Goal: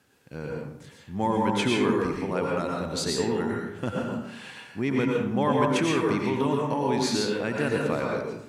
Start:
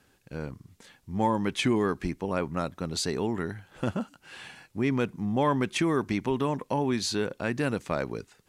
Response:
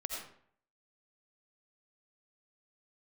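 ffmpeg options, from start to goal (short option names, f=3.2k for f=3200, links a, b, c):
-filter_complex "[0:a]highpass=82[a];[1:a]atrim=start_sample=2205,asetrate=32634,aresample=44100[b];[a][b]afir=irnorm=-1:irlink=0"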